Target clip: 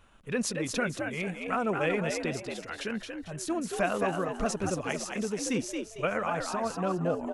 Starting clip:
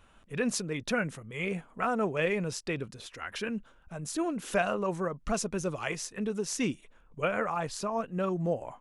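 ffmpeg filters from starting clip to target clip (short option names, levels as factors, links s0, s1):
-filter_complex "[0:a]asplit=5[s0][s1][s2][s3][s4];[s1]adelay=271,afreqshift=76,volume=0.562[s5];[s2]adelay=542,afreqshift=152,volume=0.191[s6];[s3]adelay=813,afreqshift=228,volume=0.0653[s7];[s4]adelay=1084,afreqshift=304,volume=0.0221[s8];[s0][s5][s6][s7][s8]amix=inputs=5:normalize=0,atempo=1.2"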